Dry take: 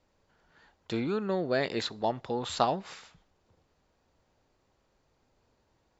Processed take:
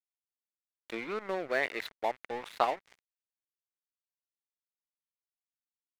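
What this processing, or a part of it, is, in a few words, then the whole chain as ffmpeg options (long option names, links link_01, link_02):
pocket radio on a weak battery: -filter_complex "[0:a]asettb=1/sr,asplit=3[link_01][link_02][link_03];[link_01]atrim=end=1.474[link_04];[link_02]atrim=start=1.47:end=2.77,asetpts=PTS-STARTPTS,afade=type=in:duration=0.004:curve=qsin,afade=type=out:start_time=1.296:duration=0.004:curve=qsin,lowshelf=frequency=420:gain=-3[link_05];[link_03]atrim=start=2.766[link_06];[link_04][link_05]acrossfade=duration=0.004:curve1=hsin:curve2=qsin[link_07];[link_07][link_06]acrossfade=duration=0.004:curve1=qsin:curve2=hsin,highpass=380,lowpass=3100,aeval=exprs='sgn(val(0))*max(abs(val(0))-0.00794,0)':channel_layout=same,equalizer=frequency=2100:width_type=o:width=0.54:gain=9"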